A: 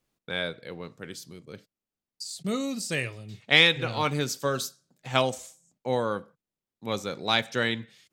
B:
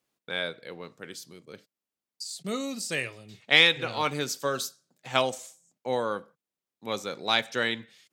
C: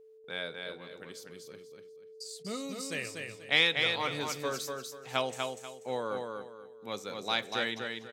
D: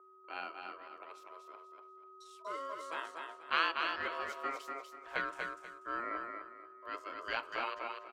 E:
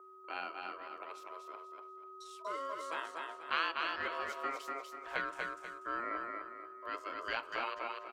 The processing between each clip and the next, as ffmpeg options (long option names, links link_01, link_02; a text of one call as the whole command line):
ffmpeg -i in.wav -af "highpass=frequency=290:poles=1" out.wav
ffmpeg -i in.wav -filter_complex "[0:a]aeval=exprs='val(0)+0.00447*sin(2*PI*440*n/s)':channel_layout=same,asplit=2[link_01][link_02];[link_02]aecho=0:1:243|486|729|972:0.596|0.167|0.0467|0.0131[link_03];[link_01][link_03]amix=inputs=2:normalize=0,volume=-6.5dB" out.wav
ffmpeg -i in.wav -filter_complex "[0:a]aeval=exprs='val(0)*sin(2*PI*820*n/s)':channel_layout=same,acrossover=split=430 2200:gain=0.0794 1 0.126[link_01][link_02][link_03];[link_01][link_02][link_03]amix=inputs=3:normalize=0,volume=2dB" out.wav
ffmpeg -i in.wav -af "acompressor=threshold=-46dB:ratio=1.5,volume=4.5dB" out.wav